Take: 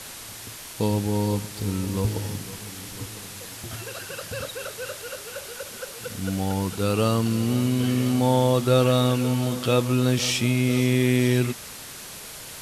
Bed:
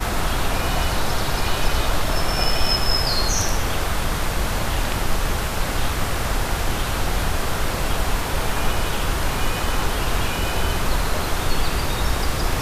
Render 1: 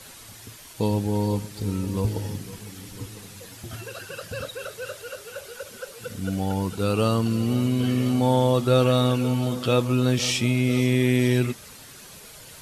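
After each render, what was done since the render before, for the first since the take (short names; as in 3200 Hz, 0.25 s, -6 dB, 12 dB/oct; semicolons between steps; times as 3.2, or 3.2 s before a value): denoiser 8 dB, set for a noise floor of -40 dBFS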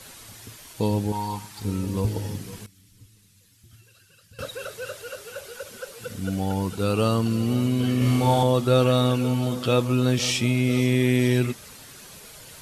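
1.12–1.65 resonant low shelf 660 Hz -8 dB, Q 3; 2.66–4.39 passive tone stack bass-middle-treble 6-0-2; 7.98–8.43 flutter echo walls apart 5.6 m, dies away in 0.96 s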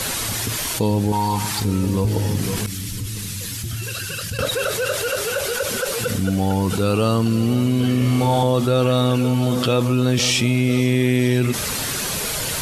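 fast leveller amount 70%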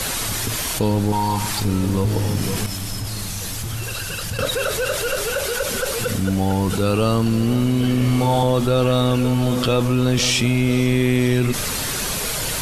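add bed -14 dB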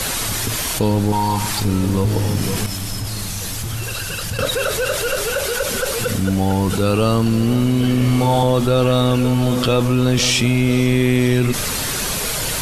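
gain +2 dB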